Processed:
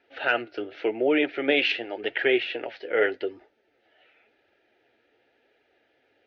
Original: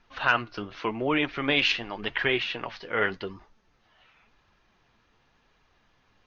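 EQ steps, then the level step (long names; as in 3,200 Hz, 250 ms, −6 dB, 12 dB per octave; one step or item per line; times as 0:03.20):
band-pass filter 260–2,100 Hz
phaser with its sweep stopped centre 440 Hz, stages 4
notch filter 1,100 Hz, Q 6.7
+7.5 dB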